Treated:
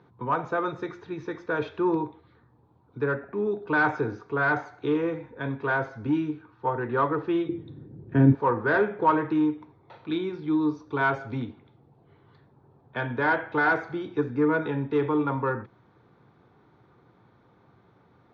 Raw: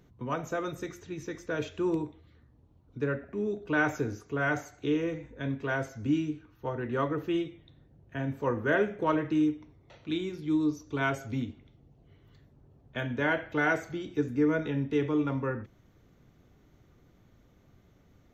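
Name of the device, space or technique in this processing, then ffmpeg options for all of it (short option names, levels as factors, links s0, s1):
overdrive pedal into a guitar cabinet: -filter_complex "[0:a]asplit=2[s0][s1];[s1]highpass=f=720:p=1,volume=5.01,asoftclip=type=tanh:threshold=0.224[s2];[s0][s2]amix=inputs=2:normalize=0,lowpass=f=1700:p=1,volume=0.501,highpass=99,equalizer=f=120:t=q:w=4:g=5,equalizer=f=260:t=q:w=4:g=-4,equalizer=f=610:t=q:w=4:g=-7,equalizer=f=910:t=q:w=4:g=5,equalizer=f=2000:t=q:w=4:g=-7,equalizer=f=2900:t=q:w=4:g=-10,lowpass=f=4200:w=0.5412,lowpass=f=4200:w=1.3066,asettb=1/sr,asplit=3[s3][s4][s5];[s3]atrim=end=7.494[s6];[s4]atrim=start=7.49:end=8.35,asetpts=PTS-STARTPTS,afade=t=in:d=0.004:c=qsin,afade=t=out:st=0.856:d=0.004:c=qsin,lowshelf=f=500:t=q:w=1.5:g=13[s7];[s5]atrim=start=8.346[s8];[s6][s7]acrossfade=d=0.004:c1=hsin:c2=qsin[s9];[s9][s8]acrossfade=d=0.004:c1=qsin:c2=hsin,volume=1.41"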